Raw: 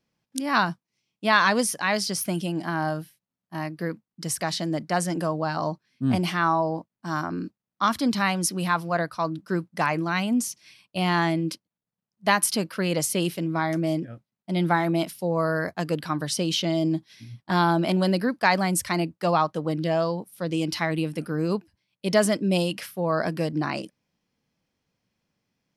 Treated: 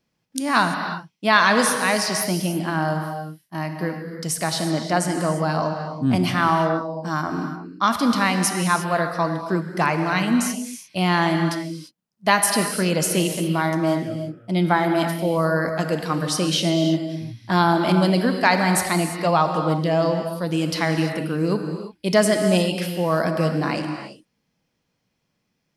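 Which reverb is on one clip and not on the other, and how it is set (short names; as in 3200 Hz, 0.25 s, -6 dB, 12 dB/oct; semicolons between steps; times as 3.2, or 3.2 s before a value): non-linear reverb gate 0.37 s flat, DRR 5 dB; gain +3 dB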